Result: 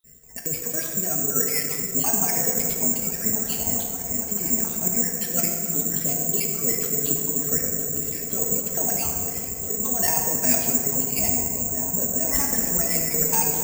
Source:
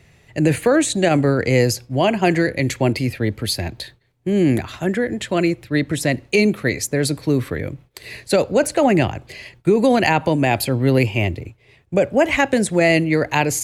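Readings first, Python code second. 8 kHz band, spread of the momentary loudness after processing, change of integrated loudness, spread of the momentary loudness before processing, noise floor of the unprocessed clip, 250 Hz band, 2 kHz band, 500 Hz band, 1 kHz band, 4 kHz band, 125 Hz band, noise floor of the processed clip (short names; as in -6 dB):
+9.0 dB, 6 LU, -2.5 dB, 11 LU, -55 dBFS, -12.5 dB, -14.0 dB, -14.0 dB, -11.0 dB, -8.0 dB, -13.5 dB, -32 dBFS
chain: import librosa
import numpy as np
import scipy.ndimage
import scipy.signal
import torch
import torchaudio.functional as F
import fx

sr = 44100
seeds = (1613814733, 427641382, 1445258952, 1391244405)

p1 = fx.spec_dropout(x, sr, seeds[0], share_pct=37)
p2 = fx.lowpass(p1, sr, hz=1100.0, slope=6)
p3 = fx.dereverb_blind(p2, sr, rt60_s=1.5)
p4 = fx.low_shelf(p3, sr, hz=110.0, db=5.5)
p5 = p4 + 0.9 * np.pad(p4, (int(4.4 * sr / 1000.0), 0))[:len(p4)]
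p6 = fx.transient(p5, sr, attack_db=-7, sustain_db=-2)
p7 = fx.over_compress(p6, sr, threshold_db=-23.0, ratio=-1.0)
p8 = 10.0 ** (-11.5 / 20.0) * np.tanh(p7 / 10.0 ** (-11.5 / 20.0))
p9 = p8 + fx.echo_opening(p8, sr, ms=429, hz=200, octaves=1, feedback_pct=70, wet_db=-3, dry=0)
p10 = fx.rev_plate(p9, sr, seeds[1], rt60_s=2.3, hf_ratio=0.5, predelay_ms=0, drr_db=0.5)
p11 = (np.kron(p10[::6], np.eye(6)[0]) * 6)[:len(p10)]
y = p11 * 10.0 ** (-8.5 / 20.0)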